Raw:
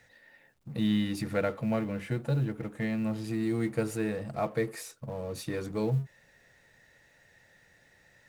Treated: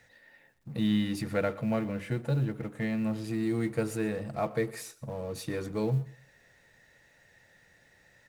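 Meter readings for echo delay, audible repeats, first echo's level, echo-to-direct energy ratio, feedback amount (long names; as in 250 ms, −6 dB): 123 ms, 2, −20.0 dB, −19.5 dB, 26%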